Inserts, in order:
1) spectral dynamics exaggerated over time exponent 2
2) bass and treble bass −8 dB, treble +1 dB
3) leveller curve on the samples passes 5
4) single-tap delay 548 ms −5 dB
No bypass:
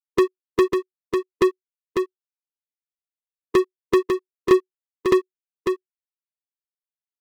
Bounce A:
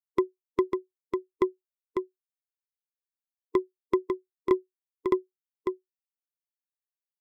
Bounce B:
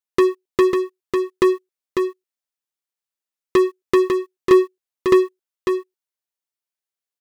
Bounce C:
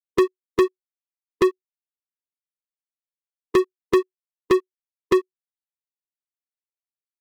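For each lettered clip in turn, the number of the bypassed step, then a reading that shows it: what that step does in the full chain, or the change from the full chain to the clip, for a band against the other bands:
3, change in crest factor +6.0 dB
1, change in integrated loudness +3.0 LU
4, change in momentary loudness spread −8 LU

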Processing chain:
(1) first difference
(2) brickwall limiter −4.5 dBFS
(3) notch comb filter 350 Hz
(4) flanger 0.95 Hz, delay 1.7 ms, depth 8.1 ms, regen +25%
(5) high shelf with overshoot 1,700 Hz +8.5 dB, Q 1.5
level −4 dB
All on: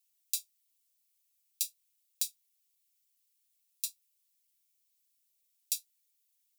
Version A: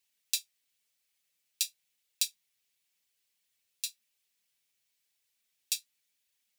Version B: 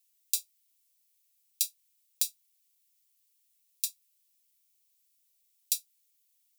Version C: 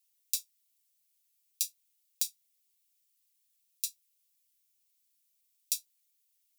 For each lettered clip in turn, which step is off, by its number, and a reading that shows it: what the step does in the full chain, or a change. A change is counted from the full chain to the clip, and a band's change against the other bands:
1, change in crest factor −2.5 dB
4, change in integrated loudness +4.0 LU
3, change in integrated loudness +1.0 LU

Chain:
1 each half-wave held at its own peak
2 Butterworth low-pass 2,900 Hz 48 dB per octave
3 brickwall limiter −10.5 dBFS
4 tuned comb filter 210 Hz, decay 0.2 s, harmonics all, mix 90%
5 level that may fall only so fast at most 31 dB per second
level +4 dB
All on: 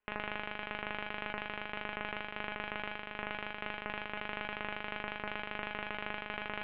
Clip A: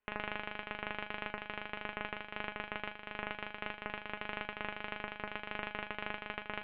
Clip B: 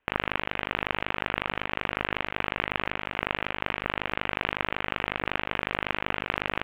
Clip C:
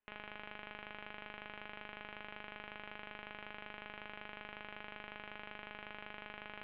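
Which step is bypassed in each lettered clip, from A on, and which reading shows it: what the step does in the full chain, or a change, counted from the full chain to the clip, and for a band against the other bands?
5, change in integrated loudness −2.0 LU
4, 125 Hz band +3.5 dB
1, 4 kHz band +1.5 dB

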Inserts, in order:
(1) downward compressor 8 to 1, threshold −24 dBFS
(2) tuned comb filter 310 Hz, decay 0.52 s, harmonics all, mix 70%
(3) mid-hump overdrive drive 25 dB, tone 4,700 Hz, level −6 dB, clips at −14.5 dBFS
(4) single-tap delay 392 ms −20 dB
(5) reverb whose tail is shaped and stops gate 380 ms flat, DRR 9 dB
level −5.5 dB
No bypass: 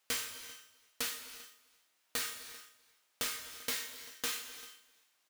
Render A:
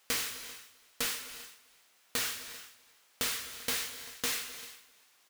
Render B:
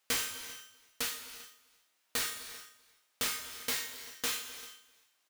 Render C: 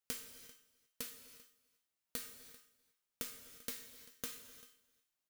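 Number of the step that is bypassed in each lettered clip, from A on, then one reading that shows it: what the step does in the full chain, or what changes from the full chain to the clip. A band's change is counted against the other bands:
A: 2, 125 Hz band +3.5 dB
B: 1, average gain reduction 4.5 dB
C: 3, change in crest factor +10.5 dB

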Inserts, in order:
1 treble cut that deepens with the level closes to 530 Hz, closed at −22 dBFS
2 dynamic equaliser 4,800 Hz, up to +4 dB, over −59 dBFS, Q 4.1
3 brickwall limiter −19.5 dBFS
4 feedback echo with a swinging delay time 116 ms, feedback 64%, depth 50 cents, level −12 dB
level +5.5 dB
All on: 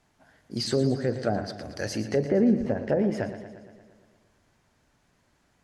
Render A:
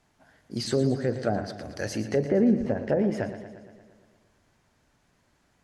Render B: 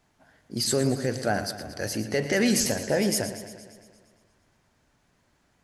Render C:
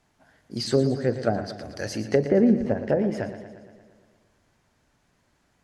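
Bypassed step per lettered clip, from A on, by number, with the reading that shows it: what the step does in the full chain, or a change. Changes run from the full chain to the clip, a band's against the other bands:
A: 2, 4 kHz band −3.0 dB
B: 1, 8 kHz band +13.5 dB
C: 3, change in crest factor +2.5 dB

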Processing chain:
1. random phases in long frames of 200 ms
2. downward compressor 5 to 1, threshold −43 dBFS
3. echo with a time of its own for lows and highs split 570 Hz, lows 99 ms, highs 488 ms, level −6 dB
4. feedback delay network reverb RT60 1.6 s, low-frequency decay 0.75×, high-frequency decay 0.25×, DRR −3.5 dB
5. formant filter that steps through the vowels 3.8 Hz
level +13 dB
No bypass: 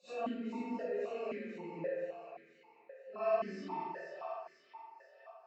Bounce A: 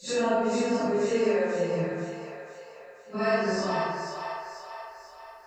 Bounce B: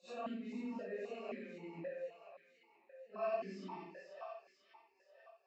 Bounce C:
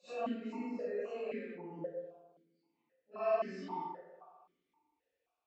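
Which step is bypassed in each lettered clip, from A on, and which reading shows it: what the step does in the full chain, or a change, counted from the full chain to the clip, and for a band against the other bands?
5, 125 Hz band +6.0 dB
4, 1 kHz band −2.5 dB
3, change in momentary loudness spread −2 LU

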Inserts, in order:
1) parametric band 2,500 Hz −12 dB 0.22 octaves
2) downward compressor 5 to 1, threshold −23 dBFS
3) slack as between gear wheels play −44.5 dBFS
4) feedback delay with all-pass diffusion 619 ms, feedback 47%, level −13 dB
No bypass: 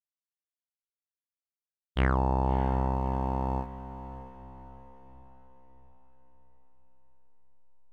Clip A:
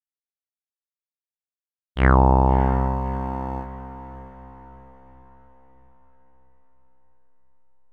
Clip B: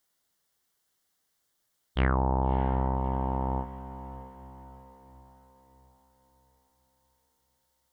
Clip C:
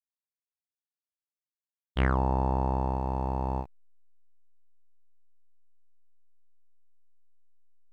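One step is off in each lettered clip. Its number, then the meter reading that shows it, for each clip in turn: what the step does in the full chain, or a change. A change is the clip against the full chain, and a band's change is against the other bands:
2, change in momentary loudness spread +2 LU
3, distortion level −21 dB
4, echo-to-direct ratio −12.0 dB to none audible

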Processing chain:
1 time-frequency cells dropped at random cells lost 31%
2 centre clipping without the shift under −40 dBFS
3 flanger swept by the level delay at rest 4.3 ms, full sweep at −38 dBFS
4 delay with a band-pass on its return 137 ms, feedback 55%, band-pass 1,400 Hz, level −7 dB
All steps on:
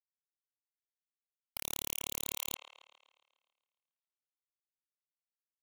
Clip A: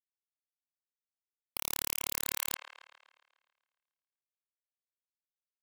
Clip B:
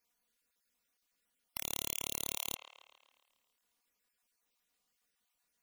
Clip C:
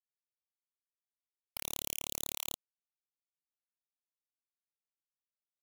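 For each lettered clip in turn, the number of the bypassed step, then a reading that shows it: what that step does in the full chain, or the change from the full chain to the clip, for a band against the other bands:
3, change in crest factor +2.0 dB
2, distortion level −18 dB
4, change in momentary loudness spread −1 LU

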